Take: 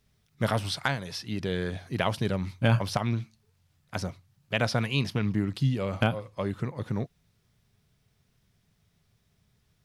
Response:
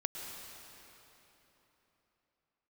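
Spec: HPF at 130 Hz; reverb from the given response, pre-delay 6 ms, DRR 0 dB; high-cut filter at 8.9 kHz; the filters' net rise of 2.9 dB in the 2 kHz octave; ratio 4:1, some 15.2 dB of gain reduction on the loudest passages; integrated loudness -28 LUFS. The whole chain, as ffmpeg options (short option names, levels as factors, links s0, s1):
-filter_complex "[0:a]highpass=130,lowpass=8900,equalizer=f=2000:t=o:g=4,acompressor=threshold=0.0112:ratio=4,asplit=2[s0][s1];[1:a]atrim=start_sample=2205,adelay=6[s2];[s1][s2]afir=irnorm=-1:irlink=0,volume=0.841[s3];[s0][s3]amix=inputs=2:normalize=0,volume=3.98"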